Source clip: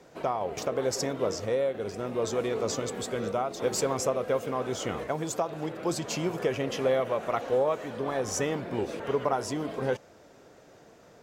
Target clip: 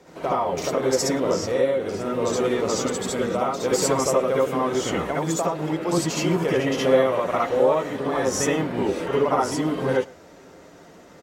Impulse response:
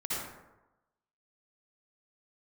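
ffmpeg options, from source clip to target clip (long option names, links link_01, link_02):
-filter_complex "[0:a]asplit=2[link_01][link_02];[link_02]adelay=110.8,volume=-24dB,highshelf=frequency=4000:gain=-2.49[link_03];[link_01][link_03]amix=inputs=2:normalize=0[link_04];[1:a]atrim=start_sample=2205,atrim=end_sample=3528[link_05];[link_04][link_05]afir=irnorm=-1:irlink=0,volume=6.5dB"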